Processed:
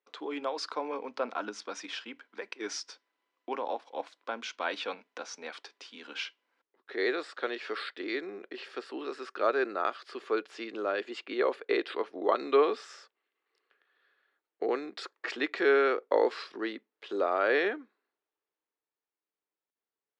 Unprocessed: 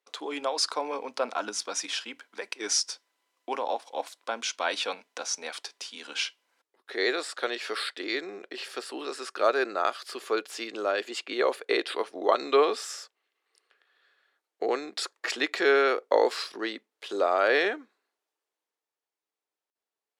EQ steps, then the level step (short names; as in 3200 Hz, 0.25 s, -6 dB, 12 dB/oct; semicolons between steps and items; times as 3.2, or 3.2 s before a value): HPF 140 Hz; tape spacing loss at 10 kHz 26 dB; bell 690 Hz -5 dB 1.1 oct; +1.5 dB